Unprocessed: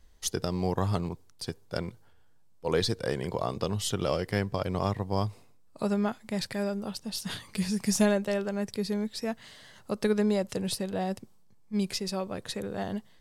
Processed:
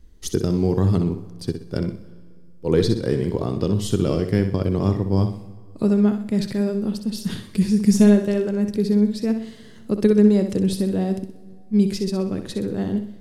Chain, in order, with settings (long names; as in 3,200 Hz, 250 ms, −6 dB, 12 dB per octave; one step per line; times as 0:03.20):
low shelf with overshoot 490 Hz +10 dB, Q 1.5
flutter between parallel walls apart 10.8 metres, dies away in 0.44 s
dense smooth reverb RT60 2.1 s, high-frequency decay 0.8×, DRR 17 dB